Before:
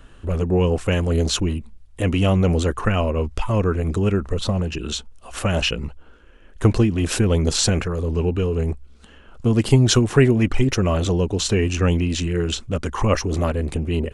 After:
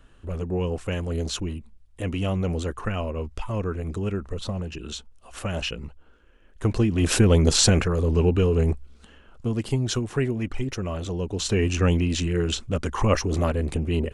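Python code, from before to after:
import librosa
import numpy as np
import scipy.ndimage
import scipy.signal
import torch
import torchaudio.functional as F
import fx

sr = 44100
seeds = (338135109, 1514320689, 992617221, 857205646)

y = fx.gain(x, sr, db=fx.line((6.64, -8.0), (7.08, 1.0), (8.71, 1.0), (9.68, -10.0), (11.08, -10.0), (11.65, -2.0)))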